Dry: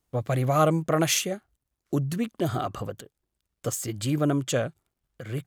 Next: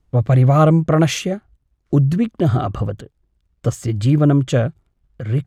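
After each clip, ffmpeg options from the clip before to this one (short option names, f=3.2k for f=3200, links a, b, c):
-af "aemphasis=mode=reproduction:type=bsi,volume=5.5dB"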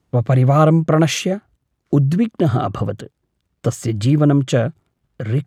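-filter_complex "[0:a]highpass=120,asplit=2[a][b];[b]acompressor=threshold=-23dB:ratio=6,volume=-1dB[c];[a][c]amix=inputs=2:normalize=0,volume=-1dB"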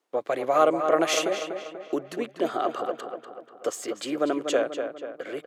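-filter_complex "[0:a]highpass=f=370:w=0.5412,highpass=f=370:w=1.3066,asplit=2[a][b];[b]adelay=243,lowpass=f=3.3k:p=1,volume=-7dB,asplit=2[c][d];[d]adelay=243,lowpass=f=3.3k:p=1,volume=0.51,asplit=2[e][f];[f]adelay=243,lowpass=f=3.3k:p=1,volume=0.51,asplit=2[g][h];[h]adelay=243,lowpass=f=3.3k:p=1,volume=0.51,asplit=2[i][j];[j]adelay=243,lowpass=f=3.3k:p=1,volume=0.51,asplit=2[k][l];[l]adelay=243,lowpass=f=3.3k:p=1,volume=0.51[m];[c][e][g][i][k][m]amix=inputs=6:normalize=0[n];[a][n]amix=inputs=2:normalize=0,volume=-4.5dB"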